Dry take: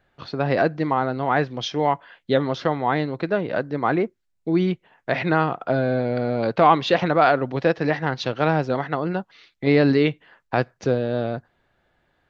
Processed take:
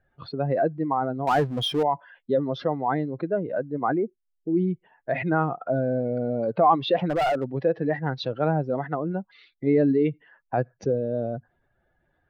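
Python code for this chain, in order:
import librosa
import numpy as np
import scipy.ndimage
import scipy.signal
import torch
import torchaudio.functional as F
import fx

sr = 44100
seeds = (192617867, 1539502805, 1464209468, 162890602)

y = fx.spec_expand(x, sr, power=1.8)
y = fx.power_curve(y, sr, exponent=0.7, at=(1.27, 1.83))
y = fx.clip_hard(y, sr, threshold_db=-17.0, at=(7.07, 7.51), fade=0.02)
y = y * librosa.db_to_amplitude(-3.0)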